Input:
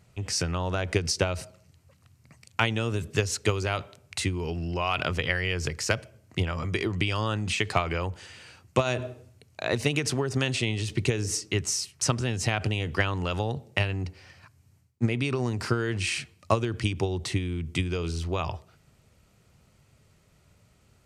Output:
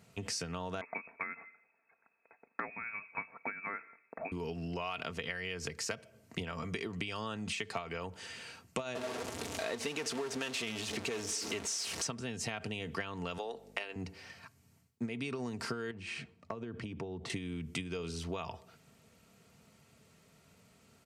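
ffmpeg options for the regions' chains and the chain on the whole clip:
ffmpeg -i in.wav -filter_complex "[0:a]asettb=1/sr,asplit=3[link_01][link_02][link_03];[link_01]atrim=end=0.814[link_04];[link_02]atrim=start=0.81:end=4.32,asetpts=PTS-STARTPTS,afade=type=in:duration=0.004:curve=qsin,afade=type=out:start_time=3.506:duration=0.004:curve=qsin,highpass=frequency=1100:poles=1,lowpass=frequency=2300:width_type=q:width=0.5098,lowpass=frequency=2300:width_type=q:width=0.6013,lowpass=frequency=2300:width_type=q:width=0.9,lowpass=frequency=2300:width_type=q:width=2.563,afreqshift=-2700[link_05];[link_03]atrim=start=4.316[link_06];[link_04][link_05]acrossfade=duration=0.004:curve1=hsin:curve2=qsin[link_07];[link_07][link_06]acrossfade=duration=0.004:curve1=qsin:curve2=hsin,asettb=1/sr,asplit=3[link_08][link_09][link_10];[link_08]atrim=end=8.954[link_11];[link_09]atrim=start=8.95:end=12.07,asetpts=PTS-STARTPTS,afade=type=in:duration=0.004:curve=qsin,afade=type=out:start_time=3.116:duration=0.004:curve=qsin,aeval=exprs='val(0)+0.5*0.0708*sgn(val(0))':channel_layout=same,lowpass=8700,equalizer=frequency=130:width=1.8:gain=-12.5[link_12];[link_10]atrim=start=12.066[link_13];[link_11][link_12]acrossfade=duration=0.004:curve1=hsin:curve2=qsin[link_14];[link_14][link_13]acrossfade=duration=0.004:curve1=qsin:curve2=hsin,asettb=1/sr,asplit=3[link_15][link_16][link_17];[link_15]atrim=end=13.384[link_18];[link_16]atrim=start=13.38:end=13.96,asetpts=PTS-STARTPTS,afade=type=in:duration=0.004:curve=qsin,afade=type=out:start_time=0.576:duration=0.004:curve=qsin,highpass=frequency=330:width=0.5412,highpass=frequency=330:width=1.3066,aeval=exprs='val(0)+0.00251*(sin(2*PI*50*n/s)+sin(2*PI*2*50*n/s)/2+sin(2*PI*3*50*n/s)/3+sin(2*PI*4*50*n/s)/4+sin(2*PI*5*50*n/s)/5)':channel_layout=same[link_19];[link_17]atrim=start=13.956[link_20];[link_18][link_19]acrossfade=duration=0.004:curve1=hsin:curve2=qsin[link_21];[link_21][link_20]acrossfade=duration=0.004:curve1=qsin:curve2=hsin,asettb=1/sr,asplit=3[link_22][link_23][link_24];[link_22]atrim=end=15.914[link_25];[link_23]atrim=start=15.91:end=17.3,asetpts=PTS-STARTPTS,afade=type=in:duration=0.004:curve=qsin,afade=type=out:start_time=1.386:duration=0.004:curve=qsin,lowpass=frequency=1000:poles=1,acompressor=threshold=-35dB:ratio=3:attack=3.2:release=140:knee=1:detection=peak[link_26];[link_24]atrim=start=17.296[link_27];[link_25][link_26]acrossfade=duration=0.004:curve1=hsin:curve2=qsin[link_28];[link_28][link_27]acrossfade=duration=0.004:curve1=qsin:curve2=hsin,highpass=120,aecho=1:1:4.4:0.41,acompressor=threshold=-37dB:ratio=4" out.wav

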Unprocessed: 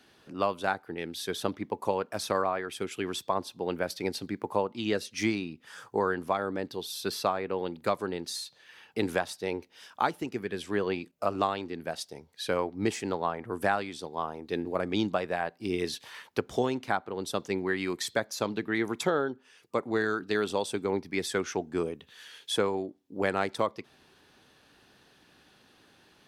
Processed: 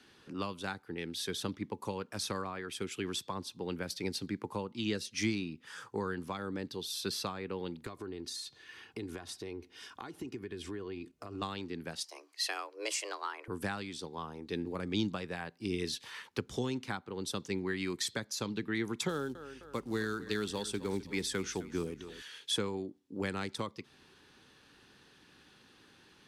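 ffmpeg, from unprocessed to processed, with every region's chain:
ffmpeg -i in.wav -filter_complex "[0:a]asettb=1/sr,asplit=3[link_01][link_02][link_03];[link_01]atrim=end=7.864[link_04];[link_02]atrim=start=7.86:end=11.42,asetpts=PTS-STARTPTS,afade=type=in:duration=0.004:curve=qsin,afade=type=out:start_time=3.556:duration=0.004:curve=qsin,lowshelf=frequency=340:gain=9,aecho=1:1:2.8:0.48,atrim=end_sample=156996,acompressor=threshold=-38dB:ratio=4:attack=3.2:release=140:knee=1:detection=peak[link_05];[link_03]atrim=start=11.416[link_06];[link_04][link_05]acrossfade=duration=0.004:curve1=hsin:curve2=qsin[link_07];[link_07][link_06]acrossfade=duration=0.004:curve1=qsin:curve2=hsin,asettb=1/sr,asplit=3[link_08][link_09][link_10];[link_08]atrim=end=12.044[link_11];[link_09]atrim=start=12.04:end=13.48,asetpts=PTS-STARTPTS,afade=type=in:duration=0.004:curve=qsin,afade=type=out:start_time=1.436:duration=0.004:curve=qsin,tiltshelf=frequency=650:gain=-5,bandreject=frequency=3400:width=7.9,afreqshift=210[link_12];[link_10]atrim=start=13.476[link_13];[link_11][link_12]acrossfade=duration=0.004:curve1=hsin:curve2=qsin[link_14];[link_14][link_13]acrossfade=duration=0.004:curve1=qsin:curve2=hsin,asettb=1/sr,asplit=3[link_15][link_16][link_17];[link_15]atrim=end=19.094[link_18];[link_16]atrim=start=19.09:end=22.22,asetpts=PTS-STARTPTS,afade=type=in:duration=0.004:curve=qsin,afade=type=out:start_time=3.126:duration=0.004:curve=qsin,aeval=exprs='val(0)+0.000708*(sin(2*PI*50*n/s)+sin(2*PI*2*50*n/s)/2+sin(2*PI*3*50*n/s)/3+sin(2*PI*4*50*n/s)/4+sin(2*PI*5*50*n/s)/5)':channel_layout=same,aecho=1:1:259|518|777:0.15|0.0598|0.0239,atrim=end_sample=138033,acrusher=bits=7:mode=log:mix=0:aa=0.000001[link_19];[link_17]atrim=start=22.216[link_20];[link_18][link_19]acrossfade=duration=0.004:curve1=hsin:curve2=qsin[link_21];[link_21][link_20]acrossfade=duration=0.004:curve1=qsin:curve2=hsin,acrossover=split=240|3000[link_22][link_23][link_24];[link_23]acompressor=threshold=-41dB:ratio=2[link_25];[link_22][link_25][link_24]amix=inputs=3:normalize=0,lowpass=11000,equalizer=frequency=660:width_type=o:width=0.46:gain=-9" out.wav

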